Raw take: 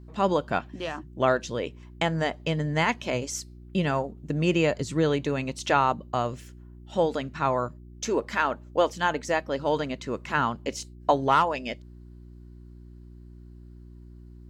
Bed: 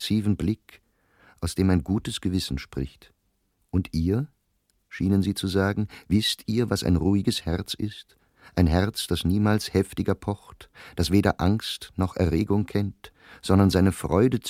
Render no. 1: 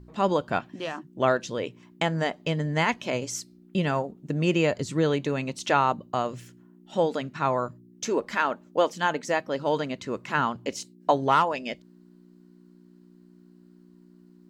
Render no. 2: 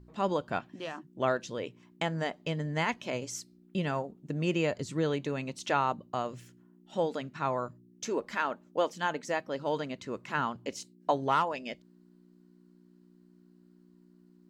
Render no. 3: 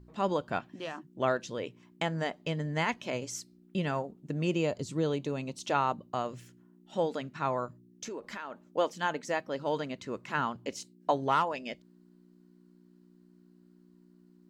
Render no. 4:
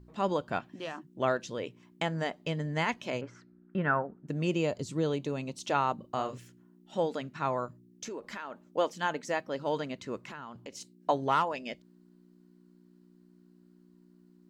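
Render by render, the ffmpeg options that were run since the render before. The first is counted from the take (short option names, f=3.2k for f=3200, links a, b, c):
-af "bandreject=f=60:t=h:w=4,bandreject=f=120:t=h:w=4"
-af "volume=-6dB"
-filter_complex "[0:a]asettb=1/sr,asplit=3[a][b][c];[a]atrim=end=4.474[d];[b]atrim=start=4.47:end=5.75,asetpts=PTS-STARTPTS,afade=t=in:d=0.004:c=qsin,afade=t=out:st=1.276:d=0.004:c=qsin,equalizer=f=1.8k:w=1.5:g=-7.5[e];[c]atrim=start=5.746[f];[d][e]acrossfade=d=0.004:c1=hsin:c2=qsin[g];[g][f]acrossfade=d=0.004:c1=qsin:c2=hsin,asplit=3[h][i][j];[h]afade=t=out:st=7.65:d=0.02[k];[i]acompressor=threshold=-36dB:ratio=6:attack=3.2:release=140:knee=1:detection=peak,afade=t=in:st=7.65:d=0.02,afade=t=out:st=8.63:d=0.02[l];[j]afade=t=in:st=8.63:d=0.02[m];[k][l][m]amix=inputs=3:normalize=0"
-filter_complex "[0:a]asettb=1/sr,asplit=3[a][b][c];[a]atrim=end=3.214[d];[b]atrim=start=3.21:end=4.28,asetpts=PTS-STARTPTS,afade=t=in:d=0.004:c=qsin,afade=t=out:st=1.066:d=0.004:c=qsin,lowpass=f=1.5k:t=q:w=4.5[e];[c]atrim=start=4.276[f];[d][e]acrossfade=d=0.004:c1=hsin:c2=qsin[g];[g][f]acrossfade=d=0.004:c1=qsin:c2=hsin,asettb=1/sr,asplit=3[h][i][j];[h]atrim=end=5.954[k];[i]atrim=start=5.95:end=6.38,asetpts=PTS-STARTPTS,afade=t=in:d=0.004:c=qsin,afade=t=out:st=0.426:d=0.004:c=qsin,asplit=2[l][m];[m]adelay=36,volume=-7dB[n];[l][n]amix=inputs=2:normalize=0,atrim=end_sample=18963[o];[j]atrim=start=6.376[p];[k][o]acrossfade=d=0.004:c1=hsin:c2=qsin[q];[q][p]acrossfade=d=0.004:c1=qsin:c2=hsin,asettb=1/sr,asplit=3[r][s][t];[r]atrim=end=10.234[u];[s]atrim=start=10.23:end=10.81,asetpts=PTS-STARTPTS,afade=t=in:d=0.004:c=qsin,afade=t=out:st=0.576:d=0.004:c=qsin,acompressor=threshold=-40dB:ratio=6:attack=3.2:release=140:knee=1:detection=peak[v];[t]atrim=start=10.806[w];[u][v]acrossfade=d=0.004:c1=hsin:c2=qsin[x];[x][w]acrossfade=d=0.004:c1=qsin:c2=hsin"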